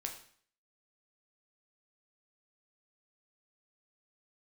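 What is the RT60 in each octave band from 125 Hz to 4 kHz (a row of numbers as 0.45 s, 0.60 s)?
0.55 s, 0.55 s, 0.50 s, 0.55 s, 0.55 s, 0.50 s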